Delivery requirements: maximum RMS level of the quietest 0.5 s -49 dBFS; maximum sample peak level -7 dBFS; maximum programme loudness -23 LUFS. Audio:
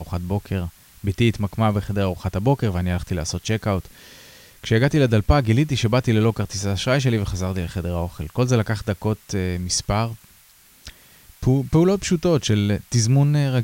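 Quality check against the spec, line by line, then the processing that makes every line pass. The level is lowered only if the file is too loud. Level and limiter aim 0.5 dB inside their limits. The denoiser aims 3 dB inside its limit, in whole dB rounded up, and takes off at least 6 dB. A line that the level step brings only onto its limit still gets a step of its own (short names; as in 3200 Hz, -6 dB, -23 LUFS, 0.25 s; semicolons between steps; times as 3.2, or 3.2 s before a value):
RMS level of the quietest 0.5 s -52 dBFS: OK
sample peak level -4.5 dBFS: fail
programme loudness -21.5 LUFS: fail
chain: gain -2 dB; limiter -7.5 dBFS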